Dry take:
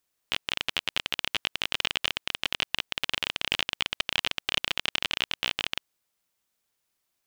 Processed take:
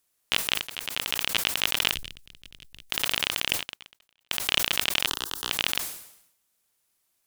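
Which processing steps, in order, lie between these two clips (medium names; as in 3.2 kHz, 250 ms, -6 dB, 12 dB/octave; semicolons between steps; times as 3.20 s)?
peaking EQ 11 kHz +6.5 dB 1.1 oct; 0.56–1.20 s: fade in; 3.52–4.31 s: gate -20 dBFS, range -48 dB; modulation noise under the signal 28 dB; 1.94–2.90 s: amplifier tone stack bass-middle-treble 10-0-1; 5.07–5.50 s: static phaser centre 620 Hz, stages 6; decay stretcher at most 77 dB/s; trim +2 dB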